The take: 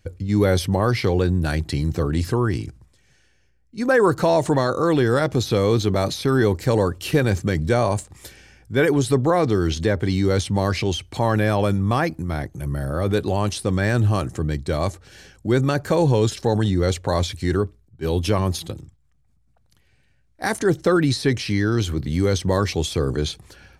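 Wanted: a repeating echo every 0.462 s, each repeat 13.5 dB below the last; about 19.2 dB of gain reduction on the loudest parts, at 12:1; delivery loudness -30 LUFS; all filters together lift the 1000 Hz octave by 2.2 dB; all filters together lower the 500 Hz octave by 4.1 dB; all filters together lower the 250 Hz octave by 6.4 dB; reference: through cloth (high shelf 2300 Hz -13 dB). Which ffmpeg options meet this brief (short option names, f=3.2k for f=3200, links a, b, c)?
-af "equalizer=f=250:t=o:g=-8.5,equalizer=f=500:t=o:g=-3.5,equalizer=f=1k:t=o:g=7,acompressor=threshold=-33dB:ratio=12,highshelf=f=2.3k:g=-13,aecho=1:1:462|924:0.211|0.0444,volume=9dB"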